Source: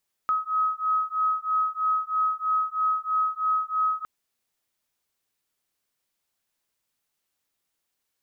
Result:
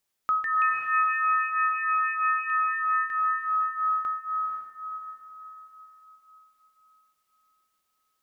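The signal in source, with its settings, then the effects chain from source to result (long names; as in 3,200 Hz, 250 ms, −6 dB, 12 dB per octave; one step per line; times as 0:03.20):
two tones that beat 1,270 Hz, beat 3.1 Hz, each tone −25.5 dBFS 3.76 s
on a send: feedback delay with all-pass diffusion 500 ms, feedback 44%, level −3.5 dB
on the sum: delay with pitch and tempo change per echo 237 ms, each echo +6 semitones, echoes 2, each echo −6 dB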